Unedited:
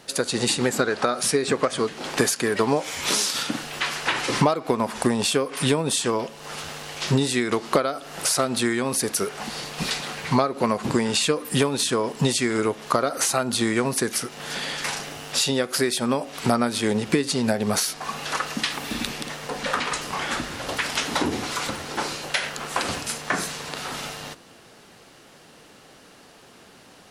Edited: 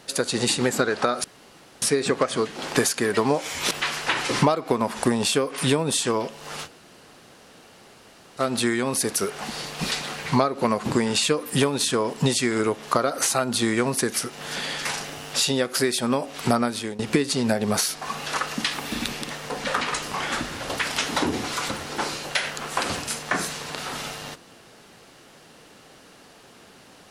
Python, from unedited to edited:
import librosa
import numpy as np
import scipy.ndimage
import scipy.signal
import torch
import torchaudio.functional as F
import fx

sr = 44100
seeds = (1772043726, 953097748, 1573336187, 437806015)

y = fx.edit(x, sr, fx.insert_room_tone(at_s=1.24, length_s=0.58),
    fx.cut(start_s=3.13, length_s=0.57),
    fx.room_tone_fill(start_s=6.65, length_s=1.74, crossfade_s=0.06),
    fx.fade_out_to(start_s=16.46, length_s=0.52, curve='qsin', floor_db=-20.5), tone=tone)